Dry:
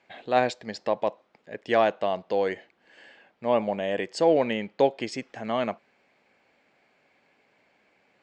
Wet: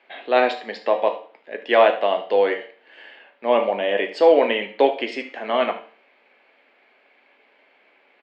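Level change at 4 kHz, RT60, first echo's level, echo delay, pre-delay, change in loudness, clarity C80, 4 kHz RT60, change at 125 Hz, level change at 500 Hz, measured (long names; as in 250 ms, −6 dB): +7.5 dB, 0.45 s, −15.0 dB, 75 ms, 4 ms, +6.0 dB, 15.0 dB, 0.45 s, can't be measured, +6.5 dB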